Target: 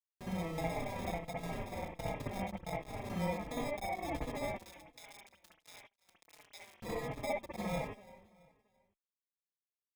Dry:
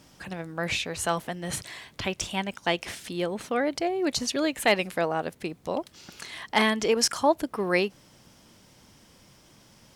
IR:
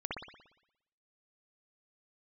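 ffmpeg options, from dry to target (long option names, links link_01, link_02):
-filter_complex "[0:a]agate=range=-33dB:threshold=-47dB:ratio=3:detection=peak,aecho=1:1:1.4:0.98,acompressor=threshold=-34dB:ratio=10,acrusher=samples=30:mix=1:aa=0.000001,aeval=exprs='sgn(val(0))*max(abs(val(0))-0.002,0)':channel_layout=same,asettb=1/sr,asplit=3[link_01][link_02][link_03];[link_01]atrim=end=4.584[link_04];[link_02]atrim=start=4.58:end=6.8,asetpts=PTS-STARTPTS,afade=type=in:duration=0.004:curve=qsin,afade=type=out:start_time=2.216:duration=0.004:curve=qsin,bandpass=frequency=4200:width_type=q:width=2.3:csg=0[link_05];[link_03]atrim=start=6.796[link_06];[link_04][link_05]acrossfade=duration=0.004:curve1=hsin:curve2=qsin[link_07];[link_07][link_06]acrossfade=duration=0.004:curve1=qsin:curve2=hsin,acrusher=bits=6:mix=0:aa=0.000001,aecho=1:1:335|670|1005:0.1|0.037|0.0137[link_08];[1:a]atrim=start_sample=2205,atrim=end_sample=3528[link_09];[link_08][link_09]afir=irnorm=-1:irlink=0,asplit=2[link_10][link_11];[link_11]adelay=4.3,afreqshift=-1.4[link_12];[link_10][link_12]amix=inputs=2:normalize=1,volume=1.5dB"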